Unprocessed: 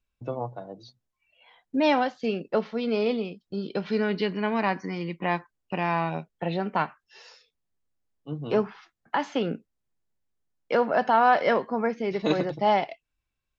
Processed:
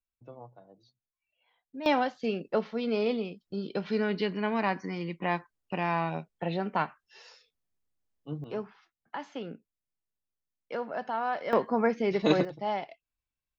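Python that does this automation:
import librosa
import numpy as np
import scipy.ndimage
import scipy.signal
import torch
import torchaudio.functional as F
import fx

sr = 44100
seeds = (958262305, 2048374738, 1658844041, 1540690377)

y = fx.gain(x, sr, db=fx.steps((0.0, -15.5), (1.86, -3.0), (8.44, -11.5), (11.53, 0.5), (12.45, -9.5)))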